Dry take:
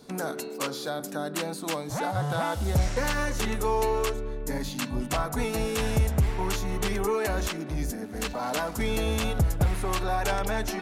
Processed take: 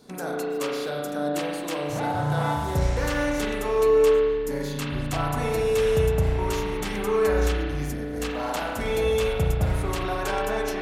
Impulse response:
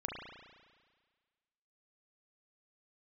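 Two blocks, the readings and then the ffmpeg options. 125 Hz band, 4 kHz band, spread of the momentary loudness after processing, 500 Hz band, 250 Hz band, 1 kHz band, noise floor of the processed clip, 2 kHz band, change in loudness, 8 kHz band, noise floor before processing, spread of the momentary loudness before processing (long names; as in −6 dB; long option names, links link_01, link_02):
+1.5 dB, 0.0 dB, 8 LU, +7.5 dB, +2.0 dB, +1.5 dB, −31 dBFS, +1.5 dB, +3.5 dB, −2.5 dB, −37 dBFS, 7 LU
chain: -filter_complex "[1:a]atrim=start_sample=2205[link_01];[0:a][link_01]afir=irnorm=-1:irlink=0"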